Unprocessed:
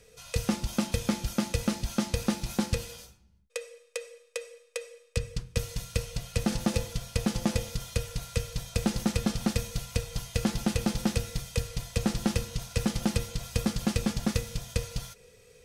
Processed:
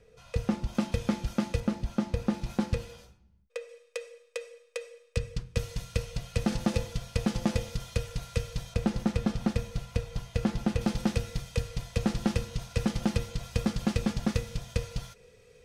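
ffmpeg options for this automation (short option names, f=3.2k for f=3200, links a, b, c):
-af "asetnsamples=n=441:p=0,asendcmd='0.75 lowpass f 2300;1.6 lowpass f 1100;2.34 lowpass f 1800;3.69 lowpass f 4100;8.74 lowpass f 1800;10.81 lowpass f 3600',lowpass=f=1.3k:p=1"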